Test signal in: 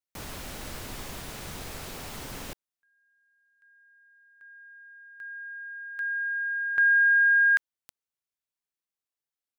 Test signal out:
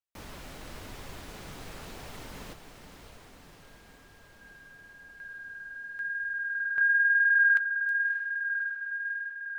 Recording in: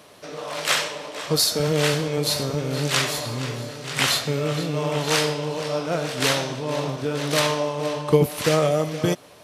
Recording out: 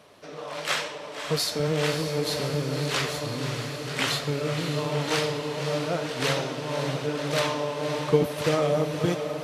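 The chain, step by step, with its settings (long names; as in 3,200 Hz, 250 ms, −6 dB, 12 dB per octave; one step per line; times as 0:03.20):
high-shelf EQ 5,700 Hz −7.5 dB
feedback delay with all-pass diffusion 603 ms, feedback 72%, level −8.5 dB
flanger 0.95 Hz, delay 1.3 ms, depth 6.3 ms, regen −61%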